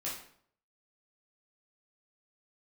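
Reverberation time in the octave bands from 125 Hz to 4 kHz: 0.70, 0.65, 0.60, 0.60, 0.50, 0.45 s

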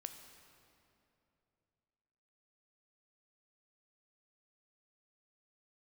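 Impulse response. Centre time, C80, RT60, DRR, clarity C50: 36 ms, 8.5 dB, 2.8 s, 6.5 dB, 7.5 dB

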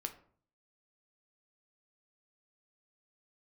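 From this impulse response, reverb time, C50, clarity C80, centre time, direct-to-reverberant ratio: 0.50 s, 13.0 dB, 17.0 dB, 9 ms, 5.5 dB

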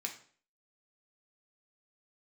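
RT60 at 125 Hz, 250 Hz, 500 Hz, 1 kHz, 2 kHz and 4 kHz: 0.50, 0.50, 0.50, 0.45, 0.45, 0.45 s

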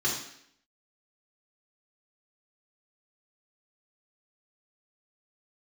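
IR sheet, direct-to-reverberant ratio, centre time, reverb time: -5.0 dB, 38 ms, 0.70 s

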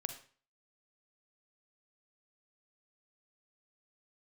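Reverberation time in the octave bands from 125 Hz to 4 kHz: 0.50, 0.45, 0.40, 0.45, 0.40, 0.40 s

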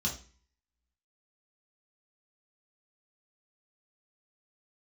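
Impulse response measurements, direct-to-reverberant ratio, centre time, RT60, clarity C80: -3.0 dB, 21 ms, 0.40 s, 15.5 dB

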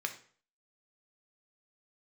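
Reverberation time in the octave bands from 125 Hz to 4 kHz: 0.50, 0.45, 0.50, 0.45, 0.45, 0.40 s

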